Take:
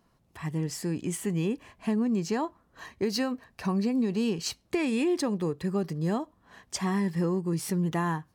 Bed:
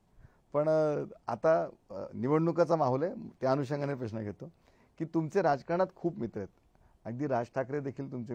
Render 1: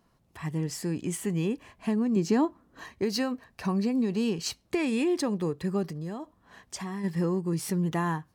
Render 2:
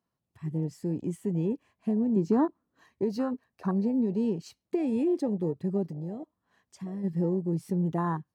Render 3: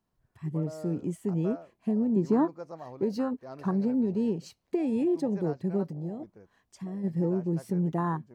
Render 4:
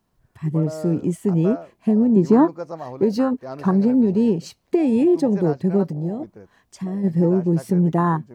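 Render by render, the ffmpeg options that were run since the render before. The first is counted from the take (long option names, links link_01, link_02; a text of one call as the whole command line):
ffmpeg -i in.wav -filter_complex "[0:a]asettb=1/sr,asplit=3[link_01][link_02][link_03];[link_01]atrim=end=2.164[link_04];[link_02]atrim=start=2.16:end=2.84,asetpts=PTS-STARTPTS,afade=type=in:duration=0.004:curve=qsin,afade=type=out:start_time=0.676:duration=0.004:curve=qsin,equalizer=frequency=280:width=1.5:gain=9.5[link_05];[link_03]atrim=start=2.836[link_06];[link_04][link_05]acrossfade=duration=0.004:curve1=hsin:curve2=qsin[link_07];[link_07][link_06]acrossfade=duration=0.004:curve1=qsin:curve2=hsin,asplit=3[link_08][link_09][link_10];[link_08]afade=type=out:start_time=5.88:duration=0.02[link_11];[link_09]acompressor=threshold=-33dB:ratio=4:attack=3.2:release=140:knee=1:detection=peak,afade=type=in:start_time=5.88:duration=0.02,afade=type=out:start_time=7.03:duration=0.02[link_12];[link_10]afade=type=in:start_time=7.03:duration=0.02[link_13];[link_11][link_12][link_13]amix=inputs=3:normalize=0" out.wav
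ffmpeg -i in.wav -af "afwtdn=0.0251,highpass=69" out.wav
ffmpeg -i in.wav -i bed.wav -filter_complex "[1:a]volume=-15dB[link_01];[0:a][link_01]amix=inputs=2:normalize=0" out.wav
ffmpeg -i in.wav -af "volume=10dB" out.wav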